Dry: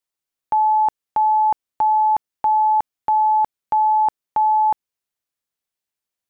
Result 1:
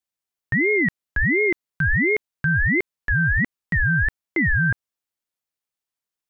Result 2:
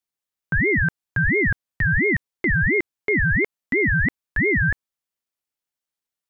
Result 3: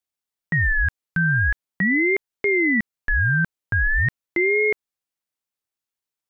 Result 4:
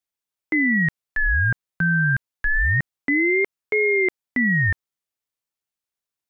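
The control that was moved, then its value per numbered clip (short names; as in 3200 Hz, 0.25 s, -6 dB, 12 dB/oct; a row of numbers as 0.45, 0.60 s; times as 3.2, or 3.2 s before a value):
ring modulator with a swept carrier, at: 1.4, 2.9, 0.43, 0.27 Hz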